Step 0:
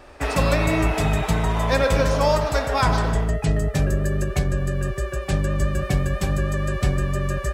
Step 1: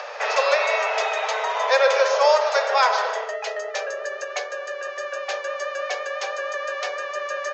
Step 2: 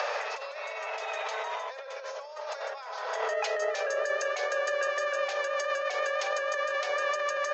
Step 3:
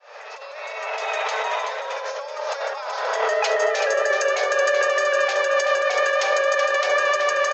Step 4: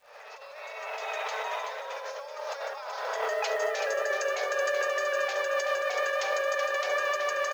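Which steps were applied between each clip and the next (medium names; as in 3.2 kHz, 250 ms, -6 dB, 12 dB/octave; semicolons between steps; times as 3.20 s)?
Chebyshev low-pass 6.7 kHz, order 6; upward compressor, threshold -26 dBFS; steep high-pass 450 Hz 96 dB/octave; trim +4 dB
compressor with a negative ratio -31 dBFS, ratio -1; trim -2.5 dB
fade-in on the opening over 1.10 s; delay 378 ms -6.5 dB; trim +9 dB
modulation noise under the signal 30 dB; crackle 350 per s -46 dBFS; trim -8.5 dB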